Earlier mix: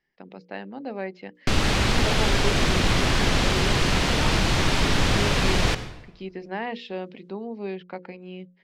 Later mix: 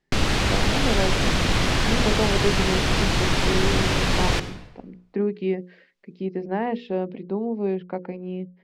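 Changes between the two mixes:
speech: add tilt shelf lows +8.5 dB, about 1.4 kHz; background: entry -1.35 s

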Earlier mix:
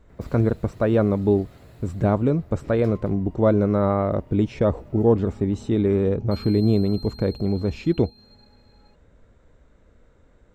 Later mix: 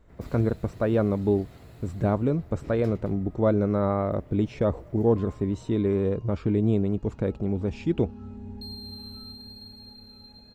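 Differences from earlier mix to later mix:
speech -4.0 dB; second sound: entry +2.30 s

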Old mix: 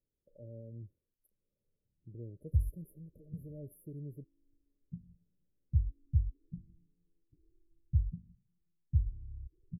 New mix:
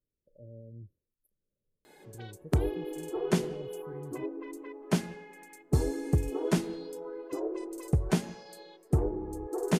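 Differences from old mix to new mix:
background: remove inverse Chebyshev low-pass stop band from 650 Hz, stop band 80 dB; reverb: on, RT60 0.45 s

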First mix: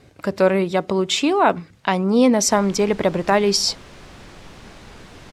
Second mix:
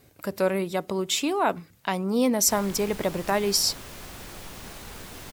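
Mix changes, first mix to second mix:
speech -8.0 dB; master: remove distance through air 83 m

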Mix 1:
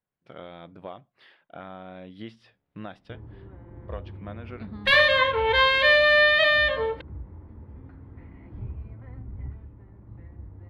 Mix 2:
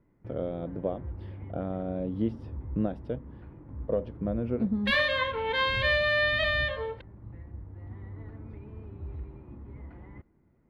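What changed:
speech: add graphic EQ 125/250/500/1000/2000/4000/8000 Hz +10/+9/+11/-5/-7/-8/-4 dB; first sound: entry -2.85 s; second sound -7.5 dB

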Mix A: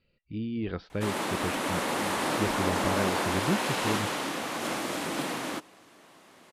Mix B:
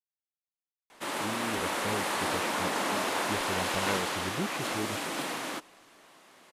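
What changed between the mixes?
speech: entry +0.90 s; master: add bass shelf 390 Hz -7.5 dB

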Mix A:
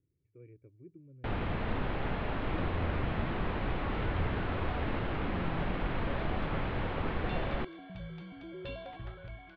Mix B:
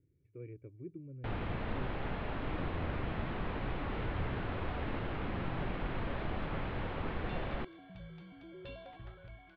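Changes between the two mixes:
speech +6.5 dB; first sound -4.0 dB; second sound -6.0 dB

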